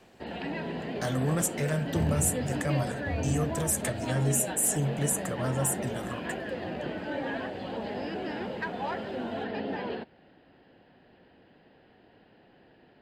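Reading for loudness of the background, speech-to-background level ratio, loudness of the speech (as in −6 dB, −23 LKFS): −34.5 LKFS, 5.0 dB, −29.5 LKFS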